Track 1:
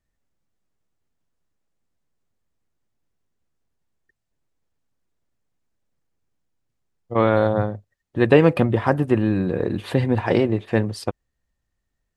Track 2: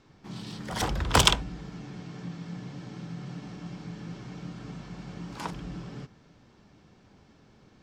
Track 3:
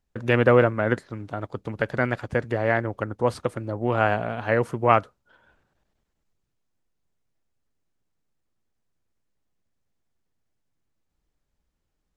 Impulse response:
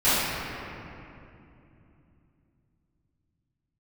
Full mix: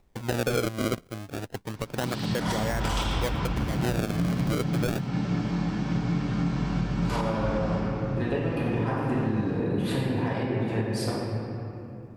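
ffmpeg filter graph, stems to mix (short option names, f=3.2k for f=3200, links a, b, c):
-filter_complex "[0:a]highshelf=f=5.2k:g=7,acompressor=threshold=-23dB:ratio=6,volume=-8dB,asplit=2[a][b];[b]volume=-11dB[c];[1:a]acompressor=threshold=-37dB:ratio=2.5,adelay=1700,volume=-3.5dB,asplit=2[d][e];[e]volume=-3dB[f];[2:a]acompressor=mode=upward:threshold=-46dB:ratio=2.5,alimiter=limit=-5.5dB:level=0:latency=1,acrusher=samples=28:mix=1:aa=0.000001:lfo=1:lforange=44.8:lforate=0.28,volume=-2.5dB[g];[3:a]atrim=start_sample=2205[h];[c][f]amix=inputs=2:normalize=0[i];[i][h]afir=irnorm=-1:irlink=0[j];[a][d][g][j]amix=inputs=4:normalize=0,alimiter=limit=-17dB:level=0:latency=1:release=205"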